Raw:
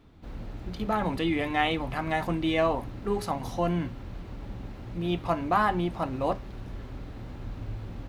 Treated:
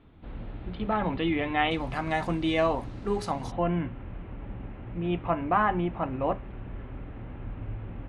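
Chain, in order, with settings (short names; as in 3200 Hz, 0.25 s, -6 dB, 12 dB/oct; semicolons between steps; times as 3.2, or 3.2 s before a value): steep low-pass 3600 Hz 36 dB/oct, from 1.7 s 10000 Hz, from 3.5 s 2900 Hz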